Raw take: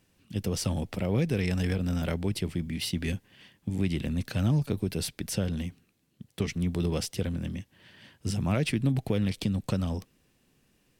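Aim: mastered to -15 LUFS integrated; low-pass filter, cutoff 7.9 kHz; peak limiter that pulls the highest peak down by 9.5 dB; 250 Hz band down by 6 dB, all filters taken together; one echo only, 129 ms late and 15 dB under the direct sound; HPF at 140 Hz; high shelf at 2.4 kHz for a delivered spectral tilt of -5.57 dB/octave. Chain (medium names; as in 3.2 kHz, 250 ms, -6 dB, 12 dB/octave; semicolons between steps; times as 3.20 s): high-pass 140 Hz; low-pass 7.9 kHz; peaking EQ 250 Hz -7.5 dB; treble shelf 2.4 kHz -5.5 dB; peak limiter -28 dBFS; delay 129 ms -15 dB; trim +24 dB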